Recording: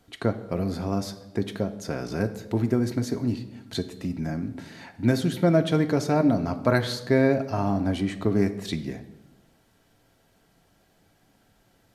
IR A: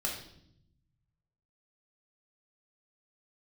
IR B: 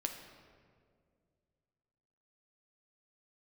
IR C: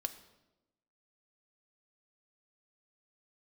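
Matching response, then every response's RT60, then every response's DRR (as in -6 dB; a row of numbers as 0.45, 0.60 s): C; 0.70, 2.1, 1.0 s; -2.0, 4.0, 6.5 dB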